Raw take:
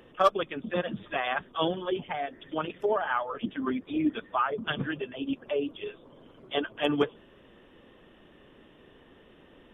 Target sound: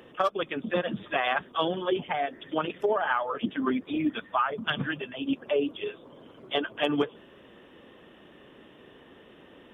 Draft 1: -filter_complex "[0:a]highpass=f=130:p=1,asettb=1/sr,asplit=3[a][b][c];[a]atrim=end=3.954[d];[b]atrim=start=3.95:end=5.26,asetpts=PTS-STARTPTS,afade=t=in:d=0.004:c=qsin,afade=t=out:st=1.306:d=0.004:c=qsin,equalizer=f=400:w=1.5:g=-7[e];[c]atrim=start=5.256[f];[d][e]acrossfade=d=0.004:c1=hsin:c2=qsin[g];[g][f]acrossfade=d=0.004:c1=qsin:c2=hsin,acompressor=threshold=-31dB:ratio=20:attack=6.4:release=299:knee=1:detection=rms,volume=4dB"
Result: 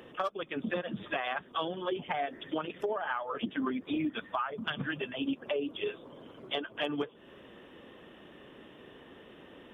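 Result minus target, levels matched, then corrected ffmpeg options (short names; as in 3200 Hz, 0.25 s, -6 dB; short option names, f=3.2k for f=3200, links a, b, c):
compressor: peak gain reduction +7.5 dB
-filter_complex "[0:a]highpass=f=130:p=1,asettb=1/sr,asplit=3[a][b][c];[a]atrim=end=3.954[d];[b]atrim=start=3.95:end=5.26,asetpts=PTS-STARTPTS,afade=t=in:d=0.004:c=qsin,afade=t=out:st=1.306:d=0.004:c=qsin,equalizer=f=400:w=1.5:g=-7[e];[c]atrim=start=5.256[f];[d][e]acrossfade=d=0.004:c1=hsin:c2=qsin[g];[g][f]acrossfade=d=0.004:c1=qsin:c2=hsin,acompressor=threshold=-23dB:ratio=20:attack=6.4:release=299:knee=1:detection=rms,volume=4dB"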